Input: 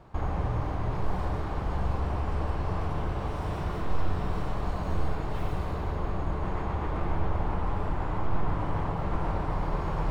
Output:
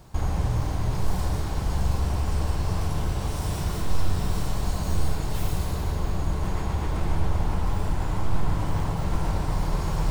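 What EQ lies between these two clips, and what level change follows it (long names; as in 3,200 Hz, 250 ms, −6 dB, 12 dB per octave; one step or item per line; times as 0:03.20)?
bass and treble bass +6 dB, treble +12 dB
high-shelf EQ 3,700 Hz +11 dB
notch filter 1,200 Hz, Q 21
−1.0 dB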